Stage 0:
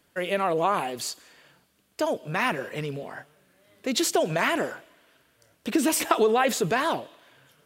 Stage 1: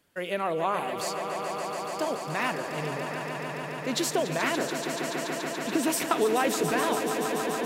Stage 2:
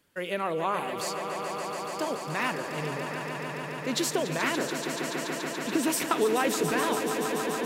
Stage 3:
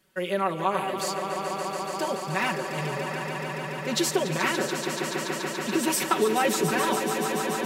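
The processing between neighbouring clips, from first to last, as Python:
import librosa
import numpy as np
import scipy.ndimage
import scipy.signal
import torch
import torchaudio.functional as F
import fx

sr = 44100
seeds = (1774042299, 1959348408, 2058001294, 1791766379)

y1 = fx.echo_swell(x, sr, ms=143, loudest=5, wet_db=-10.0)
y1 = y1 * 10.0 ** (-4.0 / 20.0)
y2 = fx.peak_eq(y1, sr, hz=690.0, db=-5.0, octaves=0.3)
y3 = y2 + 0.93 * np.pad(y2, (int(5.3 * sr / 1000.0), 0))[:len(y2)]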